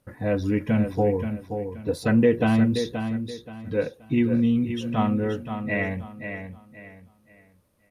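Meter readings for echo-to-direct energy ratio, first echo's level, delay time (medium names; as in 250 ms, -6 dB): -7.5 dB, -8.0 dB, 527 ms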